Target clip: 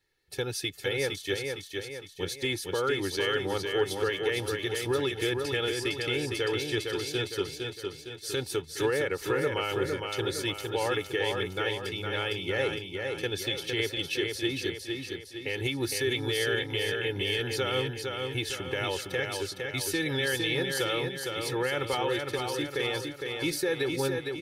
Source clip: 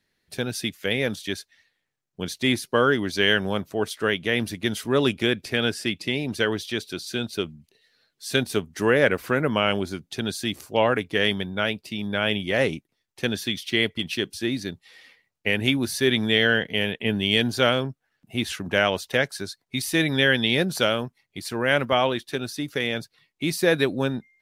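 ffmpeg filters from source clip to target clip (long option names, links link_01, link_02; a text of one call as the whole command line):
ffmpeg -i in.wav -filter_complex "[0:a]aecho=1:1:2.3:0.97,alimiter=limit=-14dB:level=0:latency=1:release=117,asplit=2[link_01][link_02];[link_02]aecho=0:1:459|918|1377|1836|2295|2754:0.596|0.292|0.143|0.0701|0.0343|0.0168[link_03];[link_01][link_03]amix=inputs=2:normalize=0,volume=-5.5dB" out.wav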